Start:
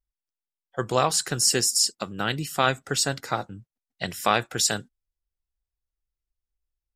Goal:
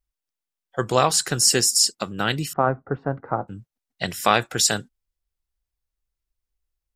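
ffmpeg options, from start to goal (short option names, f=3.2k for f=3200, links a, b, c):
-filter_complex "[0:a]asettb=1/sr,asplit=3[a][b][c];[a]atrim=end=2.534[d];[b]atrim=start=2.53:end=3.48,asetpts=PTS-STARTPTS,afade=t=in:d=0.004:c=qsin,afade=t=out:st=0.946:d=0.004:c=qsin,lowpass=f=1.2k:w=0.5412,lowpass=f=1.2k:w=1.3066[e];[c]atrim=start=3.476[f];[d][e]acrossfade=d=0.004:c1=hsin:c2=qsin[g];[g][f]acrossfade=d=0.004:c1=qsin:c2=hsin,volume=3.5dB"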